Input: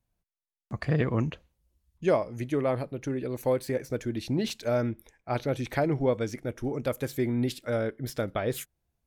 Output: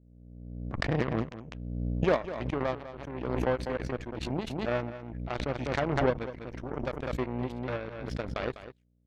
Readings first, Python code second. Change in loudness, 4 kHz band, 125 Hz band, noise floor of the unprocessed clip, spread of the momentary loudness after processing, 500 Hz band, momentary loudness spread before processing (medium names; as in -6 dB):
-3.0 dB, -2.0 dB, -3.0 dB, under -85 dBFS, 12 LU, -3.5 dB, 7 LU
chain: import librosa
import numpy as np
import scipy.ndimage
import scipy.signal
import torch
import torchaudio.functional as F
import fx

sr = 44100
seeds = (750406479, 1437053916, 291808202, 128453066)

p1 = scipy.signal.sosfilt(scipy.signal.butter(2, 3100.0, 'lowpass', fs=sr, output='sos'), x)
p2 = fx.add_hum(p1, sr, base_hz=60, snr_db=12)
p3 = fx.cheby_harmonics(p2, sr, harmonics=(3, 7), levels_db=(-17, -22), full_scale_db=-12.5)
p4 = p3 + fx.echo_single(p3, sr, ms=200, db=-13.0, dry=0)
y = fx.pre_swell(p4, sr, db_per_s=36.0)